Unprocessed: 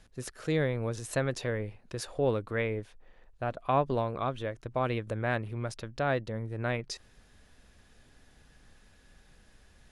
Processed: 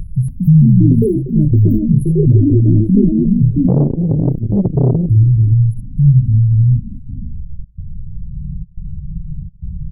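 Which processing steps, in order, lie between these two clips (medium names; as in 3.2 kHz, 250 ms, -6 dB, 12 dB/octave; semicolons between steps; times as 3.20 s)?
on a send: early reflections 55 ms -8.5 dB, 77 ms -11.5 dB; on the sum: trance gate "xx.xxxxxx.xxx" 106 bpm -24 dB; 1.06–1.52 s: amplifier tone stack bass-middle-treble 6-0-2; in parallel at -1.5 dB: upward compressor, threshold -34 dBFS; on the sum: low-pass sweep 3.5 kHz -> 170 Hz, 6.08–8.53 s; brick-wall FIR band-stop 190–10000 Hz; dynamic bell 490 Hz, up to -5 dB, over -56 dBFS, Q 2.1; ever faster or slower copies 284 ms, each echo +6 st, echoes 3; loudness maximiser +23 dB; 3.67–5.10 s: transformer saturation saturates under 240 Hz; trim -1 dB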